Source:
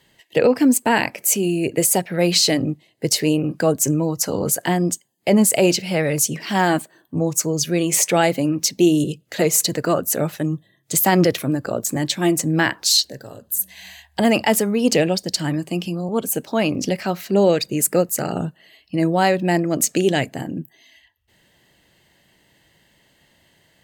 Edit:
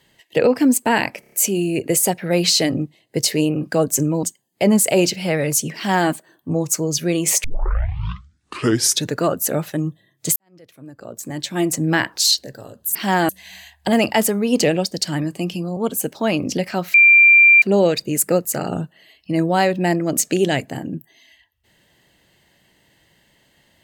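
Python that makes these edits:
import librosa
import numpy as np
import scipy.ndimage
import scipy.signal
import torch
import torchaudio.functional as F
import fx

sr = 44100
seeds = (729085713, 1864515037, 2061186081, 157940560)

y = fx.edit(x, sr, fx.stutter(start_s=1.2, slice_s=0.03, count=5),
    fx.cut(start_s=4.11, length_s=0.78),
    fx.duplicate(start_s=6.42, length_s=0.34, to_s=13.61),
    fx.tape_start(start_s=8.1, length_s=1.78),
    fx.fade_in_span(start_s=11.02, length_s=1.41, curve='qua'),
    fx.insert_tone(at_s=17.26, length_s=0.68, hz=2370.0, db=-6.5), tone=tone)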